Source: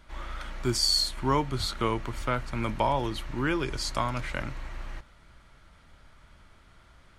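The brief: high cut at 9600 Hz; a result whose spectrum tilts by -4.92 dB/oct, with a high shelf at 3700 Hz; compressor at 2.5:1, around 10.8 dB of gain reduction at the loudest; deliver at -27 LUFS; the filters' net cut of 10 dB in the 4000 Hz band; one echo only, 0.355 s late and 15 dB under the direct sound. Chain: LPF 9600 Hz; high shelf 3700 Hz -3.5 dB; bell 4000 Hz -9 dB; compressor 2.5:1, threshold -38 dBFS; echo 0.355 s -15 dB; gain +13 dB

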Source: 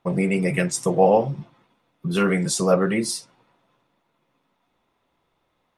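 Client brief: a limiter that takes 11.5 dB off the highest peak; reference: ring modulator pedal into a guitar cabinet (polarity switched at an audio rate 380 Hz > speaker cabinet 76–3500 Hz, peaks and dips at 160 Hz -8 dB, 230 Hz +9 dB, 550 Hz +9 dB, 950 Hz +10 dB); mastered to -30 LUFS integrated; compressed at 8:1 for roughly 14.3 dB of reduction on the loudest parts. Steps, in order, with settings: compressor 8:1, threshold -27 dBFS; limiter -26 dBFS; polarity switched at an audio rate 380 Hz; speaker cabinet 76–3500 Hz, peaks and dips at 160 Hz -8 dB, 230 Hz +9 dB, 550 Hz +9 dB, 950 Hz +10 dB

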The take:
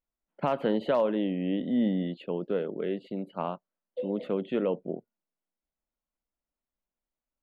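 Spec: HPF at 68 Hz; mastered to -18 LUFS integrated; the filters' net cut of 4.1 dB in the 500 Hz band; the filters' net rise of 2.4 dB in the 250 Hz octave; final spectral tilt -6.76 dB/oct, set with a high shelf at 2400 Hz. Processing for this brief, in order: HPF 68 Hz; bell 250 Hz +4.5 dB; bell 500 Hz -6 dB; high shelf 2400 Hz -4.5 dB; gain +12 dB

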